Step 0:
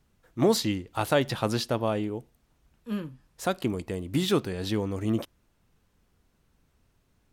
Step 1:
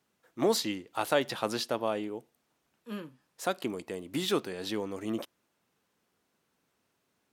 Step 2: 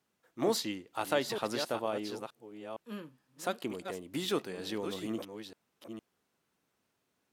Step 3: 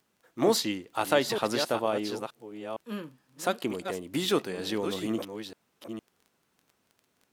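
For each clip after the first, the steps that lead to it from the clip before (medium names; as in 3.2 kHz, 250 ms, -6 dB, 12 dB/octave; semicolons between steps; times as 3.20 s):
Bessel high-pass 310 Hz, order 2; trim -2 dB
chunks repeated in reverse 461 ms, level -8 dB; trim -3.5 dB
crackle 13 per s -51 dBFS; trim +6 dB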